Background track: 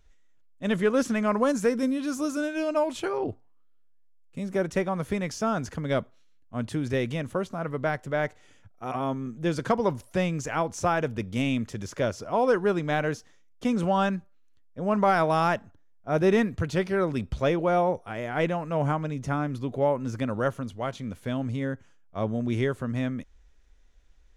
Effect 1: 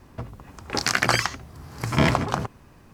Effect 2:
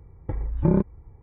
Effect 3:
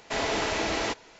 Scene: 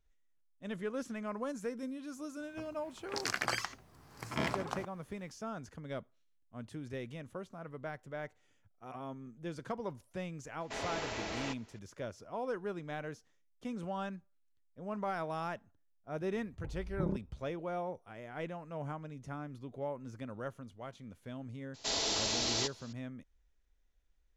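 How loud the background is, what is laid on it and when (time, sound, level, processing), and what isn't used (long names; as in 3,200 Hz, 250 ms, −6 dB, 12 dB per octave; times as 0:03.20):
background track −15 dB
0:02.39: mix in 1 −13 dB + low-shelf EQ 160 Hz −10.5 dB
0:10.60: mix in 3 −11.5 dB
0:16.35: mix in 2 −15.5 dB + low-pass filter 1,100 Hz
0:21.74: mix in 3 −10 dB + high shelf with overshoot 3,000 Hz +11 dB, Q 1.5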